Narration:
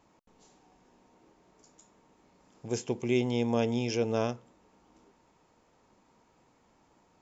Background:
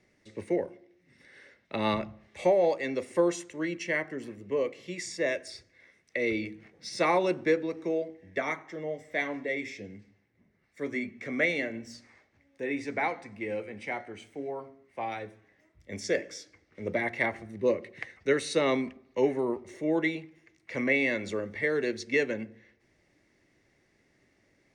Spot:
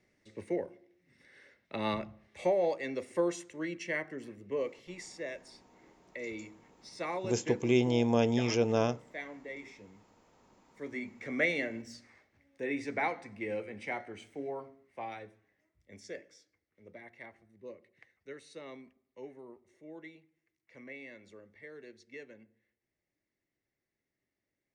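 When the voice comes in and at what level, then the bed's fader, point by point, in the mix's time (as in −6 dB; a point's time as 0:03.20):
4.60 s, +1.0 dB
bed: 0:04.69 −5 dB
0:05.27 −11.5 dB
0:10.45 −11.5 dB
0:11.38 −2.5 dB
0:14.56 −2.5 dB
0:16.81 −21 dB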